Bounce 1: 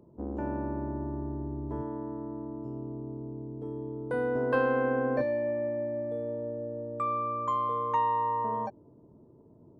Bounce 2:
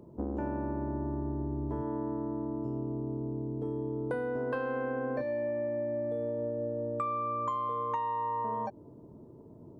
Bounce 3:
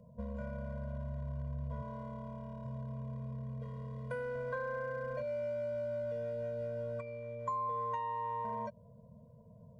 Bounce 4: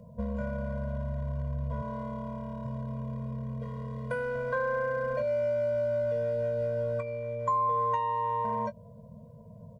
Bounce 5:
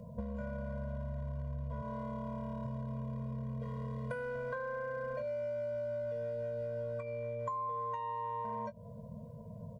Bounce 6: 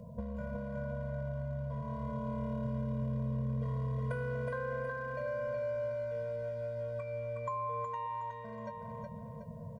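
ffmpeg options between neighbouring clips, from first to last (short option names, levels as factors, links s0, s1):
-af "acompressor=threshold=0.0178:ratio=10,volume=1.78"
-filter_complex "[0:a]acrossover=split=250|660[s0][s1][s2];[s1]asoftclip=type=hard:threshold=0.0106[s3];[s0][s3][s2]amix=inputs=3:normalize=0,afftfilt=real='re*eq(mod(floor(b*sr/1024/230),2),0)':imag='im*eq(mod(floor(b*sr/1024/230),2),0)':win_size=1024:overlap=0.75,volume=0.794"
-filter_complex "[0:a]asplit=2[s0][s1];[s1]adelay=19,volume=0.251[s2];[s0][s2]amix=inputs=2:normalize=0,volume=2.37"
-af "acompressor=threshold=0.0126:ratio=6,volume=1.19"
-af "aecho=1:1:368|736|1104|1472|1840:0.668|0.261|0.102|0.0396|0.0155"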